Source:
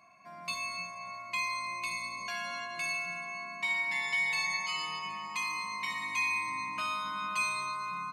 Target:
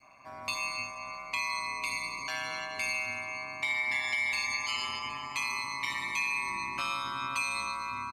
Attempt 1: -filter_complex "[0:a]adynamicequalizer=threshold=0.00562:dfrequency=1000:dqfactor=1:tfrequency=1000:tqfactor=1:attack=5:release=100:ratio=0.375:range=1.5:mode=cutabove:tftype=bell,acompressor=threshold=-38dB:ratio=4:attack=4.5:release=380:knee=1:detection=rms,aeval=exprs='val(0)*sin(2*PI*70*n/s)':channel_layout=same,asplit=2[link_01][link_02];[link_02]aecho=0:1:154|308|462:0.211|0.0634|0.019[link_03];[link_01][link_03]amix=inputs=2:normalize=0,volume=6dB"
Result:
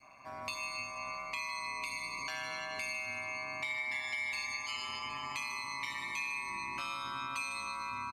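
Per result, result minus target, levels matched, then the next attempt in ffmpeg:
downward compressor: peak gain reduction +6.5 dB; echo-to-direct +9 dB
-filter_complex "[0:a]adynamicequalizer=threshold=0.00562:dfrequency=1000:dqfactor=1:tfrequency=1000:tqfactor=1:attack=5:release=100:ratio=0.375:range=1.5:mode=cutabove:tftype=bell,acompressor=threshold=-29.5dB:ratio=4:attack=4.5:release=380:knee=1:detection=rms,aeval=exprs='val(0)*sin(2*PI*70*n/s)':channel_layout=same,asplit=2[link_01][link_02];[link_02]aecho=0:1:154|308|462:0.211|0.0634|0.019[link_03];[link_01][link_03]amix=inputs=2:normalize=0,volume=6dB"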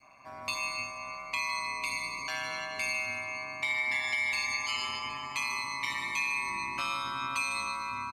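echo-to-direct +9 dB
-filter_complex "[0:a]adynamicequalizer=threshold=0.00562:dfrequency=1000:dqfactor=1:tfrequency=1000:tqfactor=1:attack=5:release=100:ratio=0.375:range=1.5:mode=cutabove:tftype=bell,acompressor=threshold=-29.5dB:ratio=4:attack=4.5:release=380:knee=1:detection=rms,aeval=exprs='val(0)*sin(2*PI*70*n/s)':channel_layout=same,asplit=2[link_01][link_02];[link_02]aecho=0:1:154|308:0.075|0.0225[link_03];[link_01][link_03]amix=inputs=2:normalize=0,volume=6dB"

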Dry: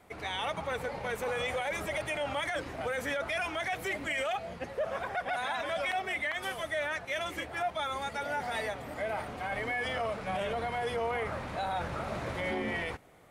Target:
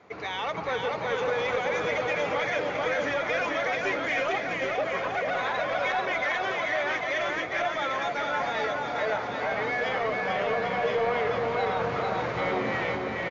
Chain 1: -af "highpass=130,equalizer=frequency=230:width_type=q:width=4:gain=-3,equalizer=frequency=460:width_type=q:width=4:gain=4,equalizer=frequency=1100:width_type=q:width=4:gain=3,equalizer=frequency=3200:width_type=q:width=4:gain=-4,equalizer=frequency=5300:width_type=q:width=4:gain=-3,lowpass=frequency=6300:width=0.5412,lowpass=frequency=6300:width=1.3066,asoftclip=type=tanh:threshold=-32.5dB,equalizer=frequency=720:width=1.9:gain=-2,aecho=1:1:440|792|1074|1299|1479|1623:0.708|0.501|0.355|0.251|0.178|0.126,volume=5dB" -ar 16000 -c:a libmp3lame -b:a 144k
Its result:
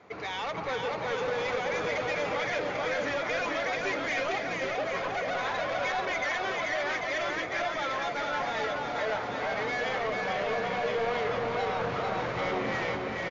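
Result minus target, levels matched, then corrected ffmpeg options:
soft clipping: distortion +9 dB
-af "highpass=130,equalizer=frequency=230:width_type=q:width=4:gain=-3,equalizer=frequency=460:width_type=q:width=4:gain=4,equalizer=frequency=1100:width_type=q:width=4:gain=3,equalizer=frequency=3200:width_type=q:width=4:gain=-4,equalizer=frequency=5300:width_type=q:width=4:gain=-3,lowpass=frequency=6300:width=0.5412,lowpass=frequency=6300:width=1.3066,asoftclip=type=tanh:threshold=-25dB,equalizer=frequency=720:width=1.9:gain=-2,aecho=1:1:440|792|1074|1299|1479|1623:0.708|0.501|0.355|0.251|0.178|0.126,volume=5dB" -ar 16000 -c:a libmp3lame -b:a 144k

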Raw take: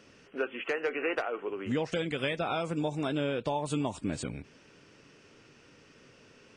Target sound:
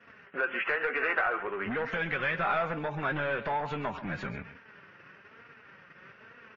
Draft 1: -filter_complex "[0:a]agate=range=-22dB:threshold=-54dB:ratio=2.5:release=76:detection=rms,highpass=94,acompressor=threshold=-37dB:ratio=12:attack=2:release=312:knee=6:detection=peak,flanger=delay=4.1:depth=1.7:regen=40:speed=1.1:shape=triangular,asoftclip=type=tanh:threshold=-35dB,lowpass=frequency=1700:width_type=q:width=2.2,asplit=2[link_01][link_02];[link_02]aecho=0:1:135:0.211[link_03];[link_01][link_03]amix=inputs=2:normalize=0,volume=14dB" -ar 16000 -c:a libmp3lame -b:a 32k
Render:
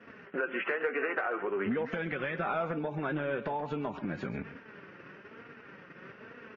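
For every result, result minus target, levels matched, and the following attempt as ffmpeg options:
downward compressor: peak gain reduction +9.5 dB; 250 Hz band +6.0 dB
-filter_complex "[0:a]agate=range=-22dB:threshold=-54dB:ratio=2.5:release=76:detection=rms,highpass=94,acompressor=threshold=-26.5dB:ratio=12:attack=2:release=312:knee=6:detection=peak,flanger=delay=4.1:depth=1.7:regen=40:speed=1.1:shape=triangular,asoftclip=type=tanh:threshold=-35dB,lowpass=frequency=1700:width_type=q:width=2.2,asplit=2[link_01][link_02];[link_02]aecho=0:1:135:0.211[link_03];[link_01][link_03]amix=inputs=2:normalize=0,volume=14dB" -ar 16000 -c:a libmp3lame -b:a 32k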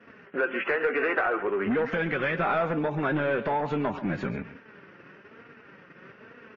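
250 Hz band +5.5 dB
-filter_complex "[0:a]agate=range=-22dB:threshold=-54dB:ratio=2.5:release=76:detection=rms,highpass=94,acompressor=threshold=-26.5dB:ratio=12:attack=2:release=312:knee=6:detection=peak,flanger=delay=4.1:depth=1.7:regen=40:speed=1.1:shape=triangular,asoftclip=type=tanh:threshold=-35dB,lowpass=frequency=1700:width_type=q:width=2.2,equalizer=frequency=300:width_type=o:width=2:gain=-10.5,asplit=2[link_01][link_02];[link_02]aecho=0:1:135:0.211[link_03];[link_01][link_03]amix=inputs=2:normalize=0,volume=14dB" -ar 16000 -c:a libmp3lame -b:a 32k

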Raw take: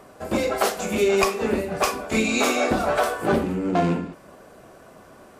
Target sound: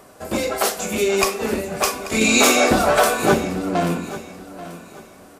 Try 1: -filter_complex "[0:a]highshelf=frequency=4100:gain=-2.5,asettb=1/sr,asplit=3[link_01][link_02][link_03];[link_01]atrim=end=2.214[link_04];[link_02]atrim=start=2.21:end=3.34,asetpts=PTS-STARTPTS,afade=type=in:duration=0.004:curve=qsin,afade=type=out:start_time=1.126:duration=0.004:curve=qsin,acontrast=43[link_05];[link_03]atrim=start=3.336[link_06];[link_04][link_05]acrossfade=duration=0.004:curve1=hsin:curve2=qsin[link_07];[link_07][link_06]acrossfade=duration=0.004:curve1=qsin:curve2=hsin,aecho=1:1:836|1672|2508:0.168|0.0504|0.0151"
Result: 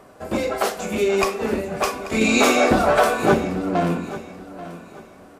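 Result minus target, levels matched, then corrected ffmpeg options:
8,000 Hz band −7.0 dB
-filter_complex "[0:a]highshelf=frequency=4100:gain=8.5,asettb=1/sr,asplit=3[link_01][link_02][link_03];[link_01]atrim=end=2.214[link_04];[link_02]atrim=start=2.21:end=3.34,asetpts=PTS-STARTPTS,afade=type=in:duration=0.004:curve=qsin,afade=type=out:start_time=1.126:duration=0.004:curve=qsin,acontrast=43[link_05];[link_03]atrim=start=3.336[link_06];[link_04][link_05]acrossfade=duration=0.004:curve1=hsin:curve2=qsin[link_07];[link_07][link_06]acrossfade=duration=0.004:curve1=qsin:curve2=hsin,aecho=1:1:836|1672|2508:0.168|0.0504|0.0151"

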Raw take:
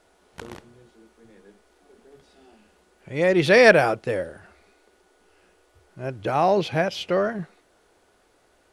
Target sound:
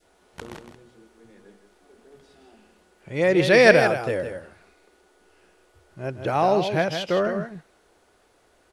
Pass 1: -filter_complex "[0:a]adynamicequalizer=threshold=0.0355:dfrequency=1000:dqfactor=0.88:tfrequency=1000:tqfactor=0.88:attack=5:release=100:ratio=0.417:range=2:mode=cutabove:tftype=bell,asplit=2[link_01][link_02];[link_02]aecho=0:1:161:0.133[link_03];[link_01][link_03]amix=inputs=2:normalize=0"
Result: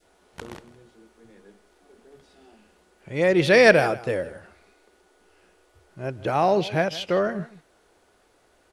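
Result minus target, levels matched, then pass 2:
echo-to-direct −9.5 dB
-filter_complex "[0:a]adynamicequalizer=threshold=0.0355:dfrequency=1000:dqfactor=0.88:tfrequency=1000:tqfactor=0.88:attack=5:release=100:ratio=0.417:range=2:mode=cutabove:tftype=bell,asplit=2[link_01][link_02];[link_02]aecho=0:1:161:0.398[link_03];[link_01][link_03]amix=inputs=2:normalize=0"

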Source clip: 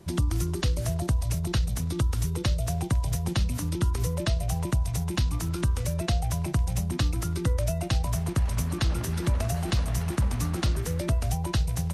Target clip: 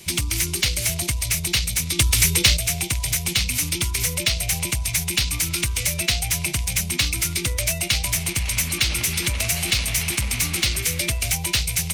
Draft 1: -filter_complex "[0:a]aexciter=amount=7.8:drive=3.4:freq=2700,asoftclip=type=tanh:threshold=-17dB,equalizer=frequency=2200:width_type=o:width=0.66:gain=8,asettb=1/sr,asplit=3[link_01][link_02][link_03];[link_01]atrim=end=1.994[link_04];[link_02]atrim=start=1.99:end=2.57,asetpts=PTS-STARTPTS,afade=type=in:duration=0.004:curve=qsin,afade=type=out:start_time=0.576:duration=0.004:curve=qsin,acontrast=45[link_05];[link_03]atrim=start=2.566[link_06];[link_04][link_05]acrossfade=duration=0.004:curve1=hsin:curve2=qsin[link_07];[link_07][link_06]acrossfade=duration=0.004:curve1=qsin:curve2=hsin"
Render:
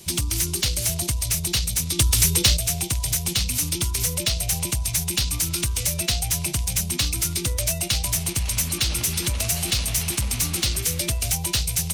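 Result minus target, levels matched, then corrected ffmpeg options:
2,000 Hz band −6.0 dB
-filter_complex "[0:a]aexciter=amount=7.8:drive=3.4:freq=2700,asoftclip=type=tanh:threshold=-17dB,equalizer=frequency=2200:width_type=o:width=0.66:gain=18,asettb=1/sr,asplit=3[link_01][link_02][link_03];[link_01]atrim=end=1.994[link_04];[link_02]atrim=start=1.99:end=2.57,asetpts=PTS-STARTPTS,afade=type=in:duration=0.004:curve=qsin,afade=type=out:start_time=0.576:duration=0.004:curve=qsin,acontrast=45[link_05];[link_03]atrim=start=2.566[link_06];[link_04][link_05]acrossfade=duration=0.004:curve1=hsin:curve2=qsin[link_07];[link_07][link_06]acrossfade=duration=0.004:curve1=qsin:curve2=hsin"

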